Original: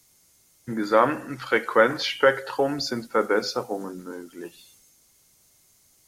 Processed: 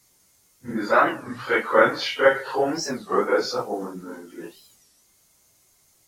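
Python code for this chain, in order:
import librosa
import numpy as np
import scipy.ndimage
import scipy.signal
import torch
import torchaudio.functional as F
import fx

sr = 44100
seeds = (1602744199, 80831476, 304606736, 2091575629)

y = fx.phase_scramble(x, sr, seeds[0], window_ms=100)
y = fx.peak_eq(y, sr, hz=890.0, db=3.5, octaves=2.3)
y = fx.record_warp(y, sr, rpm=33.33, depth_cents=250.0)
y = F.gain(torch.from_numpy(y), -1.0).numpy()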